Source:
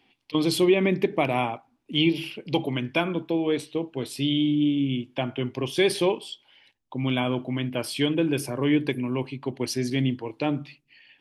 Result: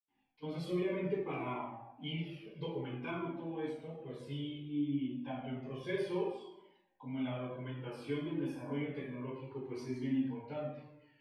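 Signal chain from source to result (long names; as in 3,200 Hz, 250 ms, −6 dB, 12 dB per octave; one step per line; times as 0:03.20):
low-pass filter 2,100 Hz 6 dB per octave
convolution reverb RT60 0.95 s, pre-delay 77 ms
flanger whose copies keep moving one way falling 0.6 Hz
level +9.5 dB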